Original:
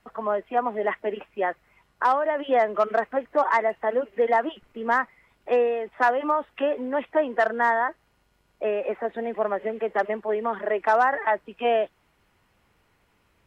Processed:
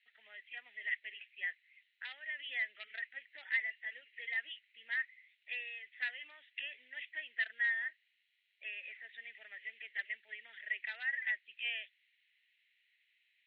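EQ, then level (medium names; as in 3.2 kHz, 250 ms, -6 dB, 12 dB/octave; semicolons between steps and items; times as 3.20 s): elliptic band-pass 1.9–3.9 kHz, stop band 40 dB; -1.5 dB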